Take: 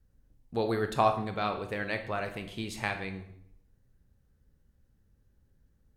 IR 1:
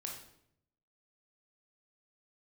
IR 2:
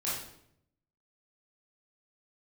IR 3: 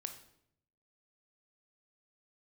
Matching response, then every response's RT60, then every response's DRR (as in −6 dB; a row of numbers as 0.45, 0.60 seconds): 3; 0.70, 0.70, 0.70 seconds; −0.5, −9.0, 6.0 decibels